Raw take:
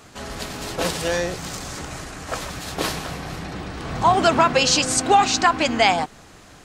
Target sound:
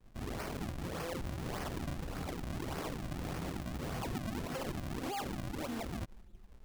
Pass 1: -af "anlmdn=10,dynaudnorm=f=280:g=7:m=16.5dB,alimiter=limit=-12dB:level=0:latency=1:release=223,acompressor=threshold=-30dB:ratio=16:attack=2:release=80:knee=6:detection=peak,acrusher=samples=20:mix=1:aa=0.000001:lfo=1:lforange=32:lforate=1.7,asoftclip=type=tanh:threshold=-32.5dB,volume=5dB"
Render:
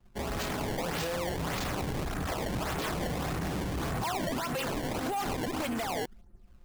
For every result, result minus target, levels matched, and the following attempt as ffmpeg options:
compressor: peak gain reduction -9 dB; decimation with a swept rate: distortion -6 dB
-af "anlmdn=10,dynaudnorm=f=280:g=7:m=16.5dB,alimiter=limit=-12dB:level=0:latency=1:release=223,acompressor=threshold=-39.5dB:ratio=16:attack=2:release=80:knee=6:detection=peak,acrusher=samples=20:mix=1:aa=0.000001:lfo=1:lforange=32:lforate=1.7,asoftclip=type=tanh:threshold=-32.5dB,volume=5dB"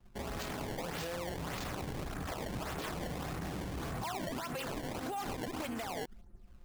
decimation with a swept rate: distortion -6 dB
-af "anlmdn=10,dynaudnorm=f=280:g=7:m=16.5dB,alimiter=limit=-12dB:level=0:latency=1:release=223,acompressor=threshold=-39.5dB:ratio=16:attack=2:release=80:knee=6:detection=peak,acrusher=samples=57:mix=1:aa=0.000001:lfo=1:lforange=91.2:lforate=1.7,asoftclip=type=tanh:threshold=-32.5dB,volume=5dB"

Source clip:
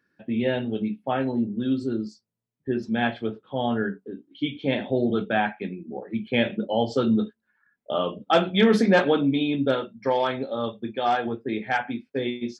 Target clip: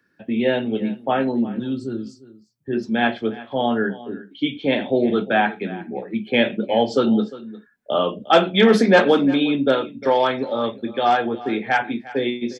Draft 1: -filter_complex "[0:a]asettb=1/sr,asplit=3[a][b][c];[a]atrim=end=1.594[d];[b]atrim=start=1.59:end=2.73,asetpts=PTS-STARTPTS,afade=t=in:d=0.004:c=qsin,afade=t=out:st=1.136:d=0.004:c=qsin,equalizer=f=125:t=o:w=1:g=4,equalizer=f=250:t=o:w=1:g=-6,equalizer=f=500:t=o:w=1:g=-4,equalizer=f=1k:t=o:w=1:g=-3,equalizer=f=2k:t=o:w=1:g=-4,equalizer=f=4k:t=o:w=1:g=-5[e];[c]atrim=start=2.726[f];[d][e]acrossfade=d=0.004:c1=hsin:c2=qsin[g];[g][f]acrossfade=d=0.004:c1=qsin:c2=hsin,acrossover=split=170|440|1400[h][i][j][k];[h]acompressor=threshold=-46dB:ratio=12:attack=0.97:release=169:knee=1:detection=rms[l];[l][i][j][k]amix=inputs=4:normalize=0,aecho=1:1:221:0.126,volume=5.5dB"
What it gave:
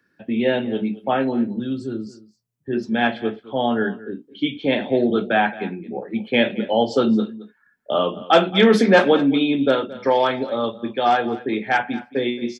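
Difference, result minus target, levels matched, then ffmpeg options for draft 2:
echo 0.132 s early
-filter_complex "[0:a]asettb=1/sr,asplit=3[a][b][c];[a]atrim=end=1.594[d];[b]atrim=start=1.59:end=2.73,asetpts=PTS-STARTPTS,afade=t=in:d=0.004:c=qsin,afade=t=out:st=1.136:d=0.004:c=qsin,equalizer=f=125:t=o:w=1:g=4,equalizer=f=250:t=o:w=1:g=-6,equalizer=f=500:t=o:w=1:g=-4,equalizer=f=1k:t=o:w=1:g=-3,equalizer=f=2k:t=o:w=1:g=-4,equalizer=f=4k:t=o:w=1:g=-5[e];[c]atrim=start=2.726[f];[d][e]acrossfade=d=0.004:c1=hsin:c2=qsin[g];[g][f]acrossfade=d=0.004:c1=qsin:c2=hsin,acrossover=split=170|440|1400[h][i][j][k];[h]acompressor=threshold=-46dB:ratio=12:attack=0.97:release=169:knee=1:detection=rms[l];[l][i][j][k]amix=inputs=4:normalize=0,aecho=1:1:353:0.126,volume=5.5dB"

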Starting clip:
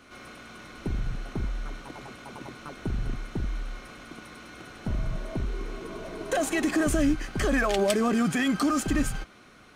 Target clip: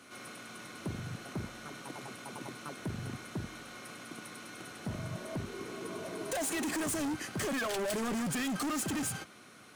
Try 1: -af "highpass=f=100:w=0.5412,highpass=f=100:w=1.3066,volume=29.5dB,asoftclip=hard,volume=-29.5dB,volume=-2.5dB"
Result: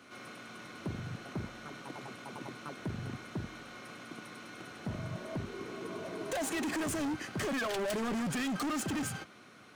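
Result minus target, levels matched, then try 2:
8000 Hz band -4.0 dB
-af "highpass=f=100:w=0.5412,highpass=f=100:w=1.3066,equalizer=f=11k:w=0.66:g=10.5,volume=29.5dB,asoftclip=hard,volume=-29.5dB,volume=-2.5dB"

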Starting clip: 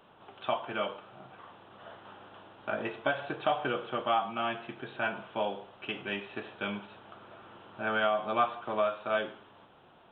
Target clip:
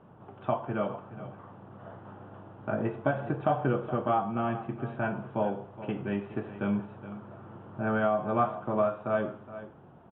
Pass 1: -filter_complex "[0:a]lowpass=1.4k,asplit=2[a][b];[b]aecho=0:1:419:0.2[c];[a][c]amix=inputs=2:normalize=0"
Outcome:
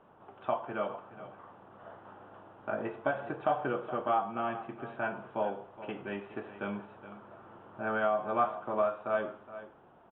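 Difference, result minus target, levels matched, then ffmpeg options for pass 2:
125 Hz band -10.0 dB
-filter_complex "[0:a]lowpass=1.4k,equalizer=f=120:w=0.53:g=14.5,asplit=2[a][b];[b]aecho=0:1:419:0.2[c];[a][c]amix=inputs=2:normalize=0"

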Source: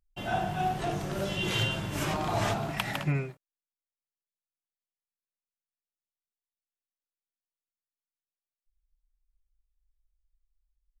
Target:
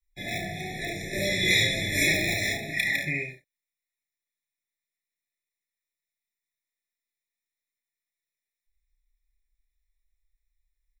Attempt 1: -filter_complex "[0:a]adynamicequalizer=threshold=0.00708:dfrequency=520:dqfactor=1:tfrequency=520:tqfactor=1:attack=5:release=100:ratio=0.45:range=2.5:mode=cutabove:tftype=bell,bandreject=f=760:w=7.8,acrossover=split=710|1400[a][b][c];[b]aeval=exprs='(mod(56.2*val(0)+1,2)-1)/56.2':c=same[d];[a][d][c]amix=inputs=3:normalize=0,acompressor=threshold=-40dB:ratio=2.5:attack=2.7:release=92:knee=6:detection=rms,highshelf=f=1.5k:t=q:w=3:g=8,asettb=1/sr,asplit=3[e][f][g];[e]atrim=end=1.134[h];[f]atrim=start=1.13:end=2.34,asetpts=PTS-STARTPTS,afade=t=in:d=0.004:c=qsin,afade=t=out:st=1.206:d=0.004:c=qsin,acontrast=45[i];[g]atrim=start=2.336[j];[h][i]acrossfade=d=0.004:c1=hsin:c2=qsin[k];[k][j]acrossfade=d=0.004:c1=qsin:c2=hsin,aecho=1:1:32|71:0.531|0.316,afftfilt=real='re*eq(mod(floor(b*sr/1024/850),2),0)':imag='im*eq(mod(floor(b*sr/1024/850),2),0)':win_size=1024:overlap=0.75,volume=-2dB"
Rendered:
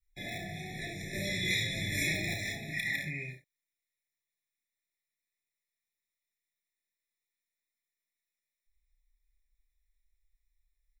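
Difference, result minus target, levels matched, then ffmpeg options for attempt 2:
compressor: peak gain reduction +11.5 dB; 125 Hz band +3.5 dB
-filter_complex "[0:a]adynamicequalizer=threshold=0.00708:dfrequency=140:dqfactor=1:tfrequency=140:tqfactor=1:attack=5:release=100:ratio=0.45:range=2.5:mode=cutabove:tftype=bell,bandreject=f=760:w=7.8,acrossover=split=710|1400[a][b][c];[b]aeval=exprs='(mod(56.2*val(0)+1,2)-1)/56.2':c=same[d];[a][d][c]amix=inputs=3:normalize=0,highshelf=f=1.5k:t=q:w=3:g=8,asettb=1/sr,asplit=3[e][f][g];[e]atrim=end=1.134[h];[f]atrim=start=1.13:end=2.34,asetpts=PTS-STARTPTS,afade=t=in:d=0.004:c=qsin,afade=t=out:st=1.206:d=0.004:c=qsin,acontrast=45[i];[g]atrim=start=2.336[j];[h][i]acrossfade=d=0.004:c1=hsin:c2=qsin[k];[k][j]acrossfade=d=0.004:c1=qsin:c2=hsin,aecho=1:1:32|71:0.531|0.316,afftfilt=real='re*eq(mod(floor(b*sr/1024/850),2),0)':imag='im*eq(mod(floor(b*sr/1024/850),2),0)':win_size=1024:overlap=0.75,volume=-2dB"

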